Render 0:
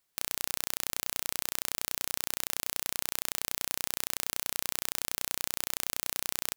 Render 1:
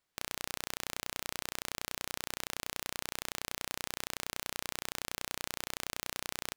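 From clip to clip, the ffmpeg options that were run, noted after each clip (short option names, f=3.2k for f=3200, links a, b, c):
-af "lowpass=f=3.6k:p=1"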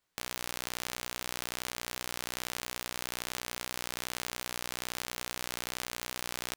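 -af "flanger=delay=15.5:depth=2.4:speed=2.9,volume=5dB"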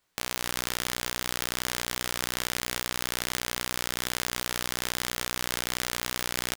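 -af "aecho=1:1:262:0.447,volume=6dB"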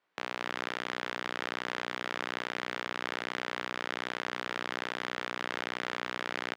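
-af "highpass=260,lowpass=2.4k"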